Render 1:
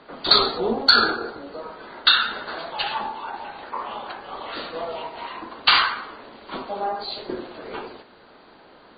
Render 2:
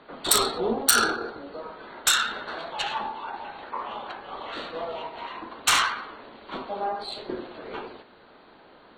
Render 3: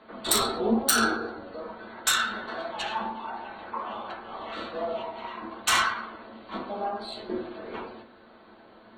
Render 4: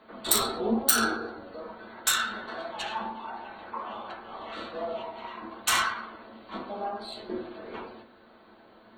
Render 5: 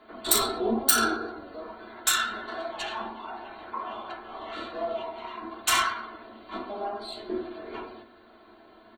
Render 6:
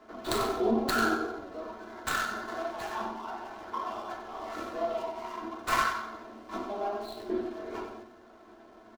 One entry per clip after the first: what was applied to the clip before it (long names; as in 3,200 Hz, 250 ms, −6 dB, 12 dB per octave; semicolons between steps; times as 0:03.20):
phase distortion by the signal itself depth 0.12 ms; notch filter 4,800 Hz, Q 5.7; level −2.5 dB
convolution reverb RT60 0.30 s, pre-delay 5 ms, DRR −0.5 dB; level −4.5 dB
high-shelf EQ 12,000 Hz +11 dB; level −2.5 dB
comb filter 2.9 ms, depth 55%
running median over 15 samples; single-tap delay 94 ms −9.5 dB